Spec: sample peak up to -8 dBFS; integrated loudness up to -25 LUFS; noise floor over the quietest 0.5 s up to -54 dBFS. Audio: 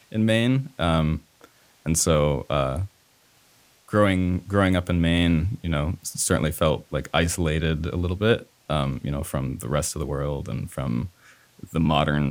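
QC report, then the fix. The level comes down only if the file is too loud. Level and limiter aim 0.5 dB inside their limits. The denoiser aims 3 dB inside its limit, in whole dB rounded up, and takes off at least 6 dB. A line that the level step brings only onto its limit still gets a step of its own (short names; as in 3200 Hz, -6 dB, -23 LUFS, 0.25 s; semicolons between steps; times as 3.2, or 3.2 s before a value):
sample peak -5.0 dBFS: fail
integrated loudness -24.0 LUFS: fail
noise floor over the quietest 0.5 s -59 dBFS: OK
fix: gain -1.5 dB; limiter -8.5 dBFS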